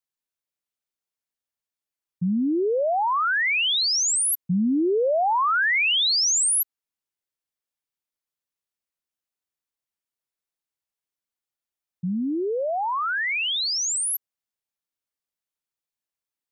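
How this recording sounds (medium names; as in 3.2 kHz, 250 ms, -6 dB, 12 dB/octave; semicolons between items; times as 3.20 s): noise floor -91 dBFS; spectral tilt -3.0 dB/octave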